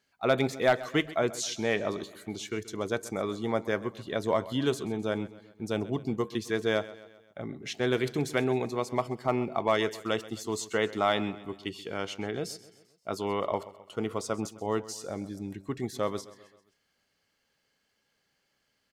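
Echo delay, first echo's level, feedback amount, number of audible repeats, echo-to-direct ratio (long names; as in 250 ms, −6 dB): 131 ms, −17.5 dB, 51%, 3, −16.0 dB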